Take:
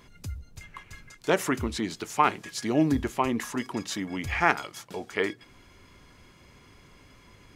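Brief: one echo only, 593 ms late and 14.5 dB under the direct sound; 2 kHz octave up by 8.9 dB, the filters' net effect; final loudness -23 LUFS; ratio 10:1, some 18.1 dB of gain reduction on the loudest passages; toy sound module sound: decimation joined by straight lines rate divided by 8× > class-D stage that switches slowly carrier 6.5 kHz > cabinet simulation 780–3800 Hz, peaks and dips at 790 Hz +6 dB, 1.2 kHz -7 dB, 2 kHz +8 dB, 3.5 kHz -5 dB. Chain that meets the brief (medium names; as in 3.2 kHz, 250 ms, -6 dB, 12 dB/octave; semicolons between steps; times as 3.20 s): peaking EQ 2 kHz +6.5 dB; compression 10:1, threshold -32 dBFS; delay 593 ms -14.5 dB; decimation joined by straight lines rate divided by 8×; class-D stage that switches slowly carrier 6.5 kHz; cabinet simulation 780–3800 Hz, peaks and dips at 790 Hz +6 dB, 1.2 kHz -7 dB, 2 kHz +8 dB, 3.5 kHz -5 dB; trim +18 dB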